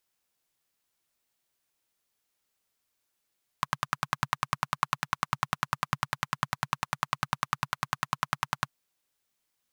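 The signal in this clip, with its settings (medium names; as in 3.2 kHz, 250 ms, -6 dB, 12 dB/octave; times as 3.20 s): single-cylinder engine model, steady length 5.05 s, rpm 1200, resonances 140/1100 Hz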